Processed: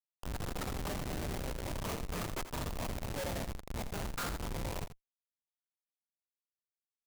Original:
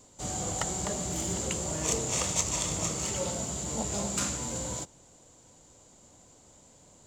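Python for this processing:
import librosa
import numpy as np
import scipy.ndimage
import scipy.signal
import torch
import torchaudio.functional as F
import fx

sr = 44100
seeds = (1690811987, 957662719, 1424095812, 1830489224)

p1 = fx.rider(x, sr, range_db=3, speed_s=2.0)
p2 = fx.wah_lfo(p1, sr, hz=0.55, low_hz=710.0, high_hz=1500.0, q=2.1)
p3 = fx.cheby_harmonics(p2, sr, harmonics=(2, 3, 7, 8), levels_db=(-35, -41, -21, -42), full_scale_db=-20.0)
p4 = fx.schmitt(p3, sr, flips_db=-47.5)
p5 = fx.high_shelf(p4, sr, hz=4600.0, db=5.5)
p6 = p5 + fx.echo_single(p5, sr, ms=84, db=-12.0, dry=0)
y = F.gain(torch.from_numpy(p6), 14.5).numpy()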